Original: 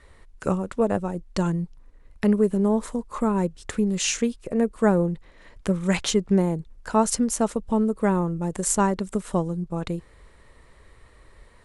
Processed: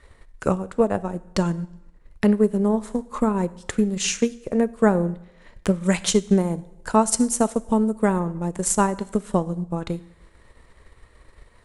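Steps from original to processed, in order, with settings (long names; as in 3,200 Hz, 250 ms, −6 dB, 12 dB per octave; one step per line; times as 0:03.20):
dense smooth reverb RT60 0.87 s, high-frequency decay 0.95×, DRR 12 dB
transient designer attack +4 dB, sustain −4 dB
0:05.84–0:08.20: parametric band 9,100 Hz +6 dB 0.78 octaves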